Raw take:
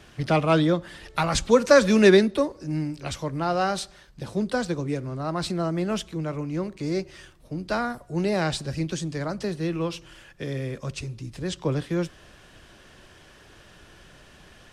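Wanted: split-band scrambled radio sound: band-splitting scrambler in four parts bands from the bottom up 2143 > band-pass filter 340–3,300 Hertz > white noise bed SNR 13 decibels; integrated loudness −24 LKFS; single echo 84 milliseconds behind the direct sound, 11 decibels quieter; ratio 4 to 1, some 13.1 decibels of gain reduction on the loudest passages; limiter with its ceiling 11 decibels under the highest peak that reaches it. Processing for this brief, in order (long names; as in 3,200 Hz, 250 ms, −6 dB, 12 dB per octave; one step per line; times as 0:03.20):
downward compressor 4 to 1, threshold −27 dBFS
brickwall limiter −23.5 dBFS
single-tap delay 84 ms −11 dB
band-splitting scrambler in four parts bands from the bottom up 2143
band-pass filter 340–3,300 Hz
white noise bed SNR 13 dB
level +7 dB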